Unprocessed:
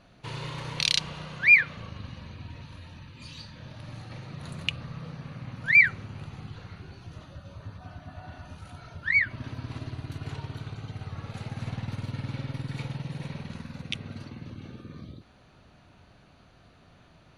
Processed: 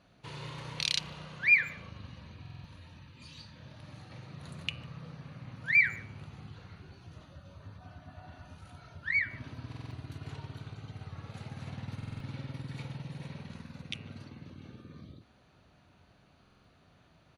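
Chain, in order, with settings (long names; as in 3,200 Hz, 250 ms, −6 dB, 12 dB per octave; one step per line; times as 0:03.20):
high-pass filter 45 Hz
hum removal 113.9 Hz, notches 26
far-end echo of a speakerphone 150 ms, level −23 dB
buffer that repeats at 0:02.41/0:09.68/0:11.97/0:16.41, samples 2,048, times 4
level −6 dB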